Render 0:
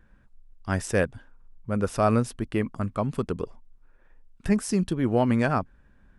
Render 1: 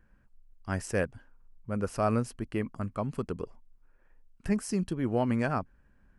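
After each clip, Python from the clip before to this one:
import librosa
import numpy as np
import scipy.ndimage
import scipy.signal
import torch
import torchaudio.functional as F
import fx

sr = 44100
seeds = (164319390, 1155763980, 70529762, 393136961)

y = fx.notch(x, sr, hz=3600.0, q=6.3)
y = F.gain(torch.from_numpy(y), -5.5).numpy()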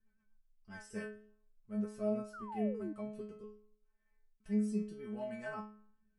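y = fx.stiff_resonator(x, sr, f0_hz=210.0, decay_s=0.57, stiffness=0.002)
y = fx.spec_paint(y, sr, seeds[0], shape='fall', start_s=2.33, length_s=0.6, low_hz=290.0, high_hz=1500.0, level_db=-46.0)
y = fx.rotary_switch(y, sr, hz=8.0, then_hz=0.8, switch_at_s=0.4)
y = F.gain(torch.from_numpy(y), 5.0).numpy()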